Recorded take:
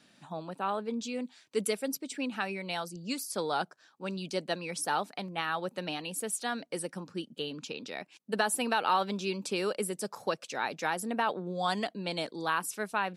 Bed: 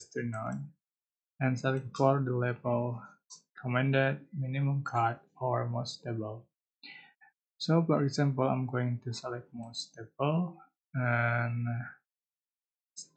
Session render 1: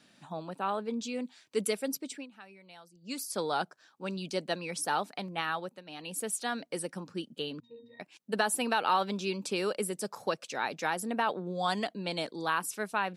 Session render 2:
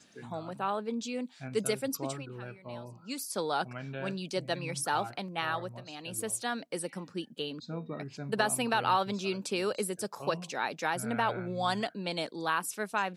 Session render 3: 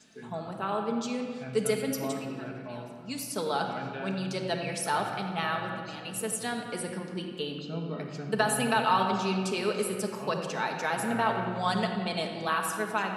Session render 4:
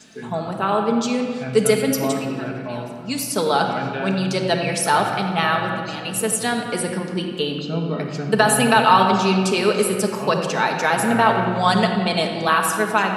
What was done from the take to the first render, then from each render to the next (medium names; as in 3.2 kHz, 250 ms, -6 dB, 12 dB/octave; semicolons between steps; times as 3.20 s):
2.08–3.20 s: dip -17.5 dB, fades 0.19 s; 5.50–6.18 s: dip -17.5 dB, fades 0.34 s; 7.60–8.00 s: pitch-class resonator A#, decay 0.32 s
add bed -12.5 dB
feedback echo behind a low-pass 90 ms, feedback 72%, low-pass 3.2 kHz, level -11 dB; simulated room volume 2700 m³, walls mixed, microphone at 1.5 m
trim +11 dB; peak limiter -1 dBFS, peak gain reduction 1.5 dB